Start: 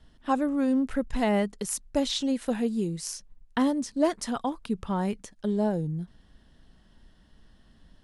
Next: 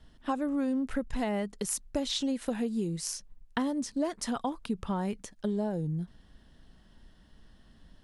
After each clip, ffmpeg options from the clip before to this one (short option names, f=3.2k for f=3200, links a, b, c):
-af "acompressor=threshold=-27dB:ratio=6"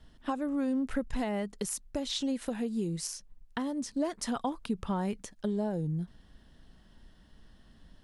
-af "alimiter=limit=-20.5dB:level=0:latency=1:release=496"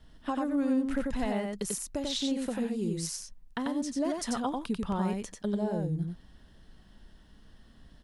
-af "aecho=1:1:92:0.708"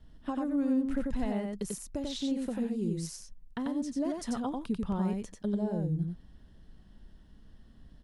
-af "lowshelf=f=480:g=8.5,volume=-7dB"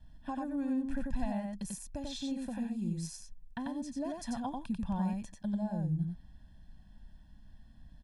-af "aecho=1:1:1.2:0.96,volume=-5.5dB"